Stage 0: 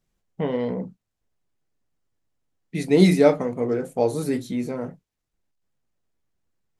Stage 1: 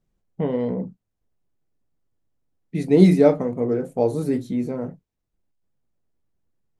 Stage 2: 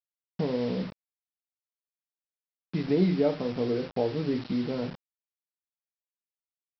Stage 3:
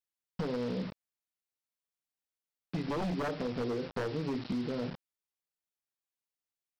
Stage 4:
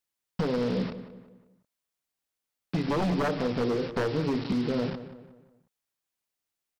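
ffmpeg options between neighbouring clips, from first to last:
-af "tiltshelf=f=970:g=5,volume=0.794"
-af "acompressor=threshold=0.0355:ratio=2,aresample=11025,acrusher=bits=6:mix=0:aa=0.000001,aresample=44100"
-af "aeval=exprs='0.0708*(abs(mod(val(0)/0.0708+3,4)-2)-1)':c=same,acompressor=threshold=0.0282:ratio=6"
-filter_complex "[0:a]asplit=2[s0][s1];[s1]adelay=181,lowpass=f=2500:p=1,volume=0.237,asplit=2[s2][s3];[s3]adelay=181,lowpass=f=2500:p=1,volume=0.43,asplit=2[s4][s5];[s5]adelay=181,lowpass=f=2500:p=1,volume=0.43,asplit=2[s6][s7];[s7]adelay=181,lowpass=f=2500:p=1,volume=0.43[s8];[s0][s2][s4][s6][s8]amix=inputs=5:normalize=0,volume=2.11"

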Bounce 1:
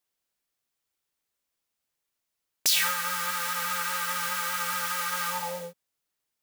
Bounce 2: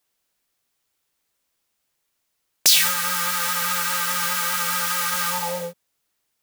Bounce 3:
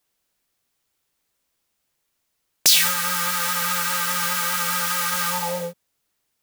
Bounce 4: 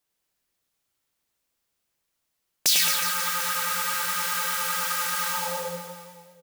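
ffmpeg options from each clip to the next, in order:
-filter_complex "[0:a]acrossover=split=340|3000[s0][s1][s2];[s1]acompressor=threshold=0.0224:ratio=6[s3];[s0][s3][s2]amix=inputs=3:normalize=0,volume=2.66"
-af "lowshelf=f=350:g=3.5"
-af "aecho=1:1:100|220|364|536.8|744.2:0.631|0.398|0.251|0.158|0.1,volume=0.501"

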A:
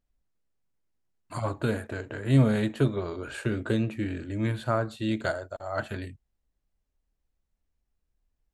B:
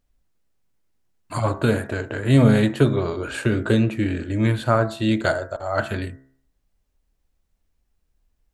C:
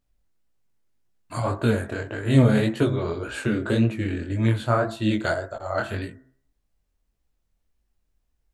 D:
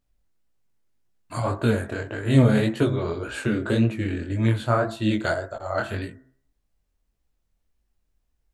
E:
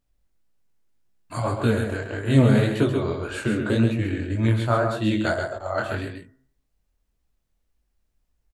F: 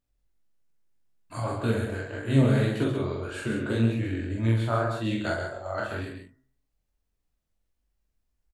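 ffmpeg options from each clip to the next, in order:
-af "bandreject=f=66.72:t=h:w=4,bandreject=f=133.44:t=h:w=4,bandreject=f=200.16:t=h:w=4,bandreject=f=266.88:t=h:w=4,bandreject=f=333.6:t=h:w=4,bandreject=f=400.32:t=h:w=4,bandreject=f=467.04:t=h:w=4,bandreject=f=533.76:t=h:w=4,bandreject=f=600.48:t=h:w=4,bandreject=f=667.2:t=h:w=4,bandreject=f=733.92:t=h:w=4,bandreject=f=800.64:t=h:w=4,bandreject=f=867.36:t=h:w=4,bandreject=f=934.08:t=h:w=4,bandreject=f=1000.8:t=h:w=4,bandreject=f=1067.52:t=h:w=4,bandreject=f=1134.24:t=h:w=4,bandreject=f=1200.96:t=h:w=4,bandreject=f=1267.68:t=h:w=4,bandreject=f=1334.4:t=h:w=4,bandreject=f=1401.12:t=h:w=4,bandreject=f=1467.84:t=h:w=4,bandreject=f=1534.56:t=h:w=4,bandreject=f=1601.28:t=h:w=4,bandreject=f=1668:t=h:w=4,bandreject=f=1734.72:t=h:w=4,bandreject=f=1801.44:t=h:w=4,bandreject=f=1868.16:t=h:w=4,bandreject=f=1934.88:t=h:w=4,bandreject=f=2001.6:t=h:w=4,bandreject=f=2068.32:t=h:w=4,volume=2.66"
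-af "flanger=delay=17:depth=7.9:speed=1.8"
-af anull
-af "aecho=1:1:134:0.473"
-filter_complex "[0:a]asplit=2[s0][s1];[s1]adelay=44,volume=0.708[s2];[s0][s2]amix=inputs=2:normalize=0,volume=0.473"

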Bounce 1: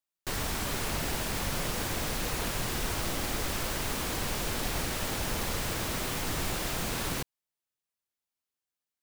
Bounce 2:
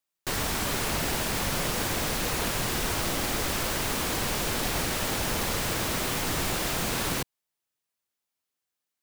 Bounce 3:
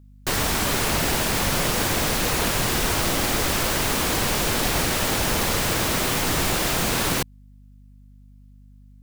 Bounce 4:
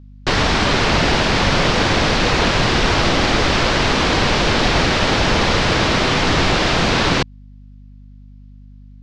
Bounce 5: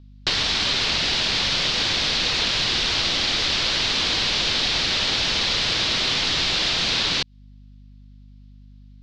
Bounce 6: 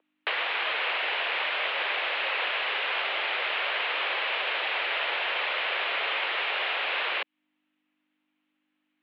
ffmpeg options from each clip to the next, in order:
-af "lowshelf=f=82:g=-5.5,volume=1.68"
-af "aeval=exprs='val(0)+0.00224*(sin(2*PI*50*n/s)+sin(2*PI*2*50*n/s)/2+sin(2*PI*3*50*n/s)/3+sin(2*PI*4*50*n/s)/4+sin(2*PI*5*50*n/s)/5)':c=same,volume=2"
-af "lowpass=f=5100:w=0.5412,lowpass=f=5100:w=1.3066,volume=2.51"
-filter_complex "[0:a]equalizer=f=3900:w=0.9:g=12,acrossover=split=1600|3500[s0][s1][s2];[s0]acompressor=threshold=0.0562:ratio=4[s3];[s1]acompressor=threshold=0.0794:ratio=4[s4];[s2]acompressor=threshold=0.126:ratio=4[s5];[s3][s4][s5]amix=inputs=3:normalize=0,volume=0.531"
-af "highpass=f=440:t=q:w=0.5412,highpass=f=440:t=q:w=1.307,lowpass=f=2700:t=q:w=0.5176,lowpass=f=2700:t=q:w=0.7071,lowpass=f=2700:t=q:w=1.932,afreqshift=55"

